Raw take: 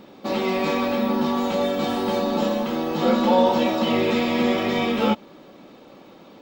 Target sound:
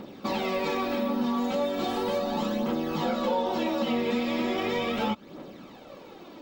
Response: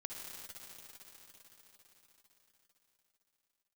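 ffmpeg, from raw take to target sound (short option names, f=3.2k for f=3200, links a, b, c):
-af "aphaser=in_gain=1:out_gain=1:delay=4.4:decay=0.45:speed=0.37:type=triangular,acompressor=threshold=-27dB:ratio=3"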